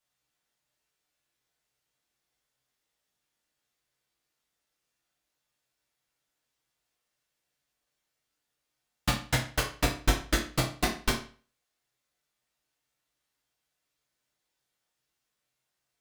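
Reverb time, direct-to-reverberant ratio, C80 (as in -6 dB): 0.40 s, -3.5 dB, 13.0 dB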